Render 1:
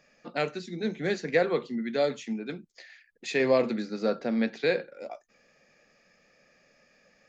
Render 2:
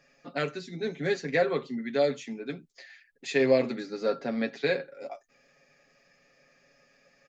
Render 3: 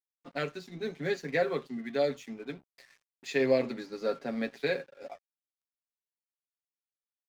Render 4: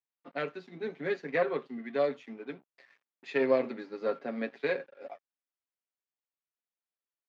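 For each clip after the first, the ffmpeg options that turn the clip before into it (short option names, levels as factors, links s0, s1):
-af "aecho=1:1:7.3:0.69,volume=0.794"
-af "aeval=exprs='sgn(val(0))*max(abs(val(0))-0.00251,0)':c=same,volume=0.708"
-af "aeval=exprs='0.2*(cos(1*acos(clip(val(0)/0.2,-1,1)))-cos(1*PI/2))+0.0501*(cos(2*acos(clip(val(0)/0.2,-1,1)))-cos(2*PI/2))':c=same,highpass=220,lowpass=2700"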